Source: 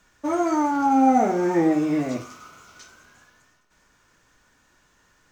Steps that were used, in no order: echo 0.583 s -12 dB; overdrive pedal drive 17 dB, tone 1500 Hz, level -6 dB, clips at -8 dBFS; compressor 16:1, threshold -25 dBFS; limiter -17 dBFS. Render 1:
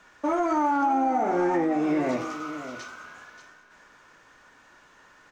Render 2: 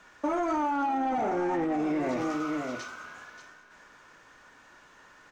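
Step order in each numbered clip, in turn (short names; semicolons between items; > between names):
compressor > overdrive pedal > limiter > echo; overdrive pedal > echo > limiter > compressor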